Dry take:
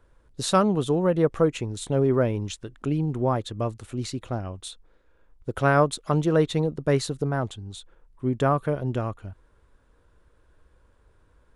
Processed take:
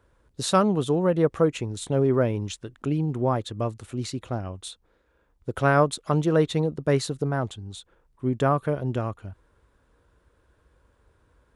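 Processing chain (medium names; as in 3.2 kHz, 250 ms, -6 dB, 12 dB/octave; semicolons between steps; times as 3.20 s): high-pass 44 Hz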